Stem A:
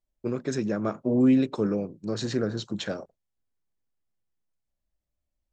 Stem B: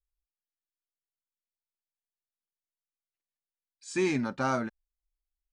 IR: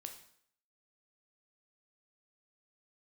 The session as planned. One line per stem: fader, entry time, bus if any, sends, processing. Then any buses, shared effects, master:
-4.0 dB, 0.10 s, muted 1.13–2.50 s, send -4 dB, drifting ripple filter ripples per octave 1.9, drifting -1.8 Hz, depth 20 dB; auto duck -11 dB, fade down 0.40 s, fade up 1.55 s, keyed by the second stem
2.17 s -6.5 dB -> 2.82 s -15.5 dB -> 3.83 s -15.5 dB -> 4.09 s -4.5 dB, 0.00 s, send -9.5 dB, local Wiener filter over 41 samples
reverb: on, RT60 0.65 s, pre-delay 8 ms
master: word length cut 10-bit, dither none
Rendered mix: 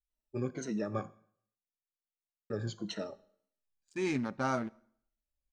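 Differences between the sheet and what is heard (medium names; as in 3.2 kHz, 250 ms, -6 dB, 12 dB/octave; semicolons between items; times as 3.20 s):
stem A -4.0 dB -> -13.0 dB; master: missing word length cut 10-bit, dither none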